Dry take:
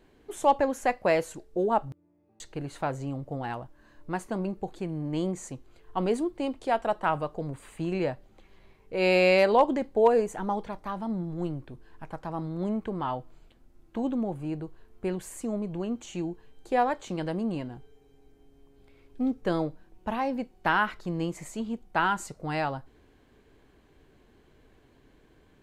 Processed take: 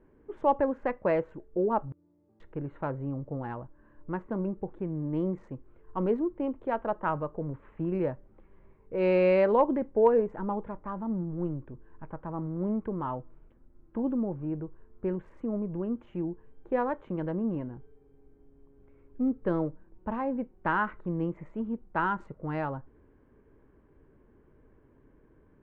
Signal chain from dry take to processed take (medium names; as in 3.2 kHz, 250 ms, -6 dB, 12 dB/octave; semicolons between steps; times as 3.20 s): local Wiener filter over 9 samples; low-pass 1.4 kHz 12 dB/octave; peaking EQ 730 Hz -11 dB 0.23 oct